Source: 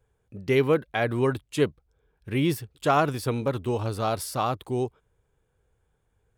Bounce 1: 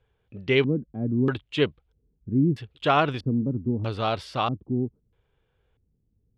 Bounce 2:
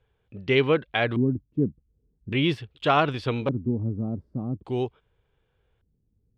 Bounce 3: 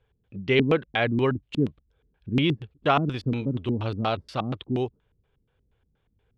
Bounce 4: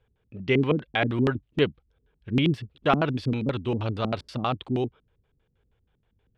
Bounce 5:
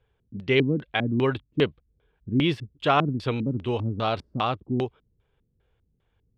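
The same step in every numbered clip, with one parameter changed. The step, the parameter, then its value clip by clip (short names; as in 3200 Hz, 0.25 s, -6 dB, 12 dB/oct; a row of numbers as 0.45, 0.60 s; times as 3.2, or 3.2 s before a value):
LFO low-pass, rate: 0.78, 0.43, 4.2, 6.3, 2.5 Hz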